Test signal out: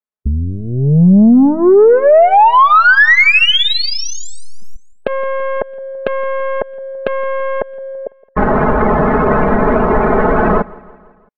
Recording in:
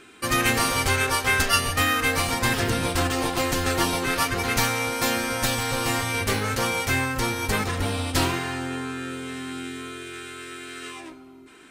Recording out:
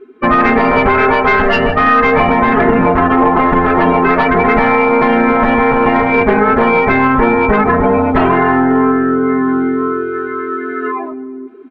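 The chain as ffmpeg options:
ffmpeg -i in.wav -filter_complex "[0:a]aeval=exprs='(tanh(4.47*val(0)+0.35)-tanh(0.35))/4.47':channel_layout=same,lowpass=1300,afftdn=noise_reduction=24:noise_floor=-40,acompressor=threshold=-27dB:ratio=3,aeval=exprs='0.2*(cos(1*acos(clip(val(0)/0.2,-1,1)))-cos(1*PI/2))+0.00141*(cos(3*acos(clip(val(0)/0.2,-1,1)))-cos(3*PI/2))+0.0282*(cos(5*acos(clip(val(0)/0.2,-1,1)))-cos(5*PI/2))':channel_layout=same,lowshelf=frequency=180:gain=-9.5,aecho=1:1:4.7:0.83,asplit=2[link_01][link_02];[link_02]aecho=0:1:167|334|501|668:0.0708|0.0404|0.023|0.0131[link_03];[link_01][link_03]amix=inputs=2:normalize=0,alimiter=level_in=19.5dB:limit=-1dB:release=50:level=0:latency=1,volume=-1dB" out.wav

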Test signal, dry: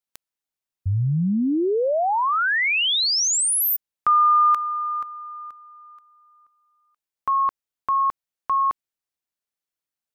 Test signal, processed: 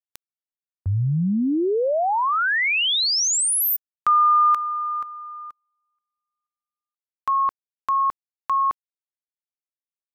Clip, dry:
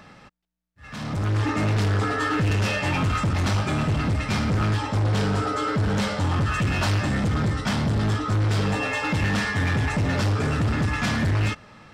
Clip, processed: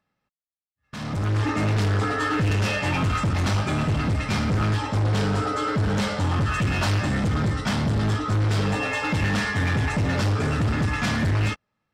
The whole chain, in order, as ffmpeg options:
ffmpeg -i in.wav -af "agate=range=-30dB:threshold=-38dB:ratio=16:release=33:detection=rms" out.wav

